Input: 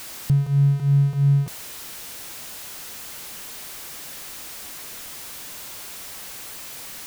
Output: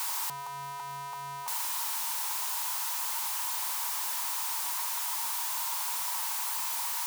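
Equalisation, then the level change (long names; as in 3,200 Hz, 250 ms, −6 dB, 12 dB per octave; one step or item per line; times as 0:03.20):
high-pass with resonance 940 Hz, resonance Q 8.9
high-shelf EQ 4,000 Hz +8 dB
−3.0 dB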